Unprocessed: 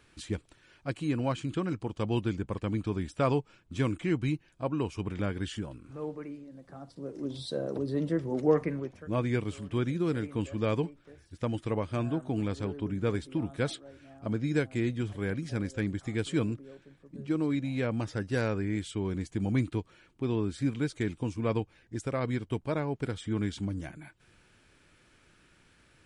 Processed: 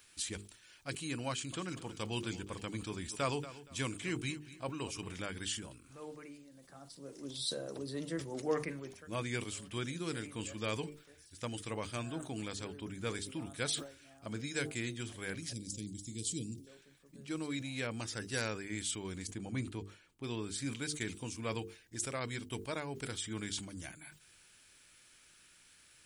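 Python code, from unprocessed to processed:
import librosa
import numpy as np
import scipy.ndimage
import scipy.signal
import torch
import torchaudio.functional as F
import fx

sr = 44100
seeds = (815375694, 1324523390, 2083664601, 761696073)

y = fx.echo_feedback(x, sr, ms=235, feedback_pct=31, wet_db=-16, at=(1.29, 5.23))
y = fx.cheby1_bandstop(y, sr, low_hz=270.0, high_hz=4900.0, order=2, at=(15.53, 16.67))
y = fx.high_shelf(y, sr, hz=2100.0, db=-9.0, at=(19.27, 20.24))
y = scipy.signal.lfilter([1.0, -0.9], [1.0], y)
y = fx.hum_notches(y, sr, base_hz=50, count=9)
y = fx.sustainer(y, sr, db_per_s=120.0)
y = F.gain(torch.from_numpy(y), 9.5).numpy()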